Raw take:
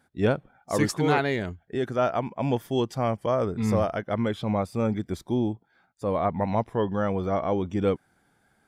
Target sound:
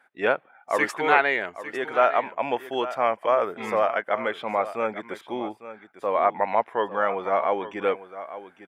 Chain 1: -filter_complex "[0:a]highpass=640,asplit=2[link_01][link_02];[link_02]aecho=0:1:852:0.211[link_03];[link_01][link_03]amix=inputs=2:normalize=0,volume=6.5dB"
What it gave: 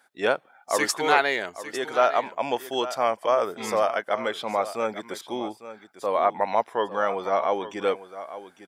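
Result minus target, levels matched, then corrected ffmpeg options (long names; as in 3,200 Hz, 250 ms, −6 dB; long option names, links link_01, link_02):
8,000 Hz band +14.0 dB
-filter_complex "[0:a]highpass=640,highshelf=frequency=3400:width_type=q:width=1.5:gain=-11.5,asplit=2[link_01][link_02];[link_02]aecho=0:1:852:0.211[link_03];[link_01][link_03]amix=inputs=2:normalize=0,volume=6.5dB"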